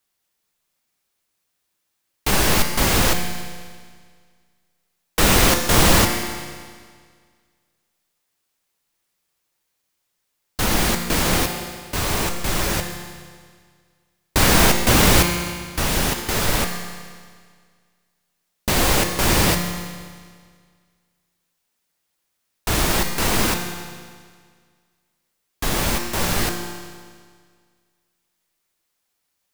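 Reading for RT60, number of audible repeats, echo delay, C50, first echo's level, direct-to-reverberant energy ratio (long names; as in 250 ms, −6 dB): 1.8 s, no echo audible, no echo audible, 5.5 dB, no echo audible, 3.5 dB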